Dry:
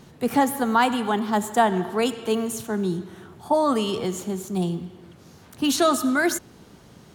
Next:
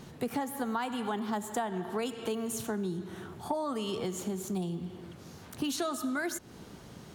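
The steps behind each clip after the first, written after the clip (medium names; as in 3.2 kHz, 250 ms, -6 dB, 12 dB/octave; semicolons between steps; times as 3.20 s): compression 6:1, threshold -31 dBFS, peak gain reduction 16 dB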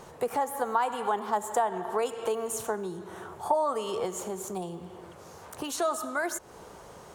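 graphic EQ 125/250/500/1000/4000/8000 Hz -5/-9/+8/+8/-4/+5 dB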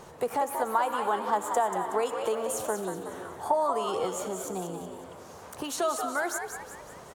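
frequency-shifting echo 185 ms, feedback 47%, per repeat +84 Hz, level -7 dB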